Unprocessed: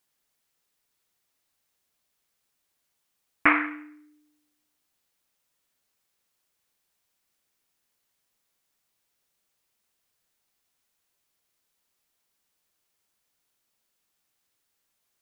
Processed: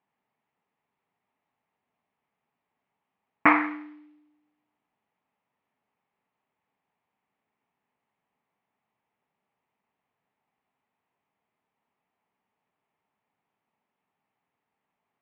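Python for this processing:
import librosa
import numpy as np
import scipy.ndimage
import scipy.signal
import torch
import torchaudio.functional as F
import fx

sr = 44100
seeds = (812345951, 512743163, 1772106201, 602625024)

y = fx.tilt_eq(x, sr, slope=-3.0)
y = fx.mod_noise(y, sr, seeds[0], snr_db=18)
y = fx.cabinet(y, sr, low_hz=230.0, low_slope=12, high_hz=2500.0, hz=(330.0, 530.0, 860.0, 1500.0), db=(-9, -7, 5, -7))
y = y * librosa.db_to_amplitude(4.5)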